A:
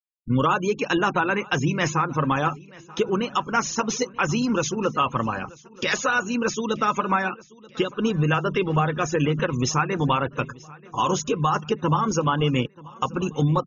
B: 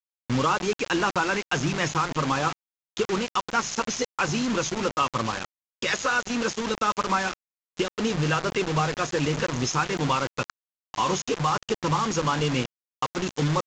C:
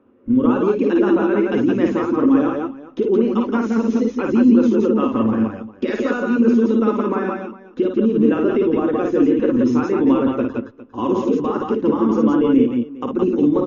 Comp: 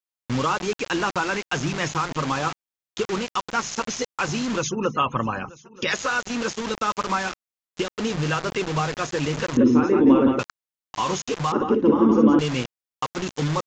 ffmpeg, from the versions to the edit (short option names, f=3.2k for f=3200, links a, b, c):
-filter_complex "[2:a]asplit=2[a][b];[1:a]asplit=4[c][d][e][f];[c]atrim=end=4.66[g];[0:a]atrim=start=4.56:end=5.98[h];[d]atrim=start=5.88:end=9.572[i];[a]atrim=start=9.568:end=10.392[j];[e]atrim=start=10.388:end=11.522[k];[b]atrim=start=11.518:end=12.392[l];[f]atrim=start=12.388[m];[g][h]acrossfade=d=0.1:c1=tri:c2=tri[n];[n][i]acrossfade=d=0.1:c1=tri:c2=tri[o];[o][j]acrossfade=d=0.004:c1=hsin:c2=hsin[p];[p][k]acrossfade=d=0.004:c1=hsin:c2=hsin[q];[q][l]acrossfade=d=0.004:c1=hsin:c2=hsin[r];[r][m]acrossfade=d=0.004:c1=hsin:c2=hsin"